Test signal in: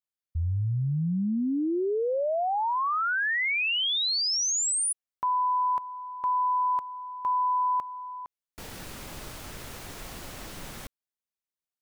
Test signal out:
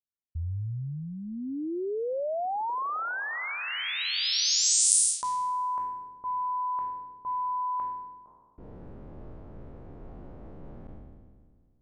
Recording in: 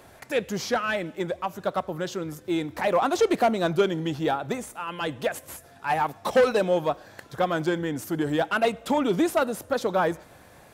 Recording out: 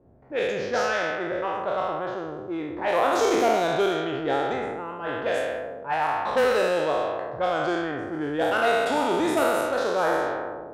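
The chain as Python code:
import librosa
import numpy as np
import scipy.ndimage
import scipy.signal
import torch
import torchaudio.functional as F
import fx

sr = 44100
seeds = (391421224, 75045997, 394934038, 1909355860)

y = fx.spec_trails(x, sr, decay_s=2.14)
y = fx.dynamic_eq(y, sr, hz=190.0, q=1.6, threshold_db=-39.0, ratio=8.0, max_db=-7)
y = fx.env_lowpass(y, sr, base_hz=360.0, full_db=-14.5)
y = y * 10.0 ** (-4.0 / 20.0)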